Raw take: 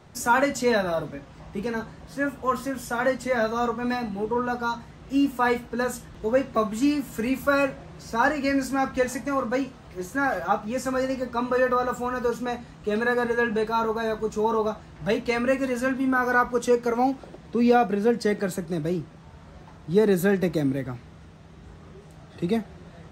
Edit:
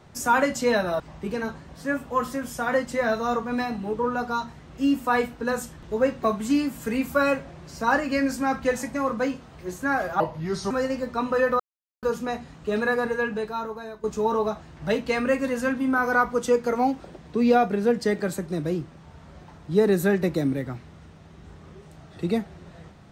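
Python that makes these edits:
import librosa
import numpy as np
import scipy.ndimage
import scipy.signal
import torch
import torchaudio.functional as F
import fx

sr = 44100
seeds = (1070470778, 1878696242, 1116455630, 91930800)

y = fx.edit(x, sr, fx.cut(start_s=1.0, length_s=0.32),
    fx.speed_span(start_s=10.52, length_s=0.38, speed=0.75),
    fx.silence(start_s=11.79, length_s=0.43),
    fx.fade_out_to(start_s=13.07, length_s=1.16, floor_db=-15.0), tone=tone)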